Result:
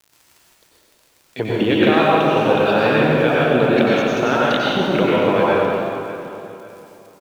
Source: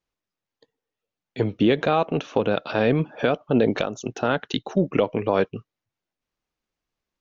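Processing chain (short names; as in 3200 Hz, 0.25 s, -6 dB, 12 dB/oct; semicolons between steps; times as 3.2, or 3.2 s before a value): LPF 3300 Hz 12 dB/oct; tilt +2 dB/oct; in parallel at +3 dB: compressor, threshold -28 dBFS, peak gain reduction 11.5 dB; on the sum: crackle 72/s -34 dBFS; crossover distortion -47 dBFS; on a send: feedback echo 0.571 s, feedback 34%, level -17.5 dB; on the sum: plate-style reverb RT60 2.5 s, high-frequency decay 0.7×, pre-delay 80 ms, DRR -7 dB; gain -2 dB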